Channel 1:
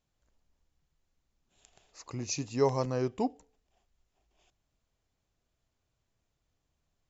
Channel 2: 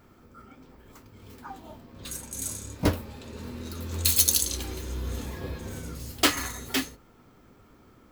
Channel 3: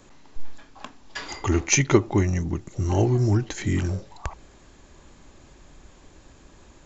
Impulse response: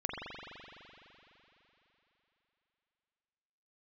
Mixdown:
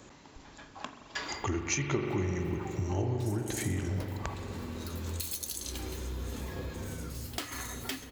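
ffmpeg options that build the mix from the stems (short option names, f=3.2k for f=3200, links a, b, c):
-filter_complex "[1:a]acompressor=threshold=-29dB:ratio=6,adelay=1150,volume=-1dB,asplit=3[a][b][c];[b]volume=-19.5dB[d];[c]volume=-22dB[e];[2:a]highpass=54,volume=-1.5dB,asplit=2[f][g];[g]volume=-10.5dB[h];[a][f]amix=inputs=2:normalize=0,acompressor=threshold=-28dB:ratio=6,volume=0dB[i];[3:a]atrim=start_sample=2205[j];[d][h]amix=inputs=2:normalize=0[k];[k][j]afir=irnorm=-1:irlink=0[l];[e]aecho=0:1:133:1[m];[i][l][m]amix=inputs=3:normalize=0,acompressor=threshold=-38dB:ratio=1.5"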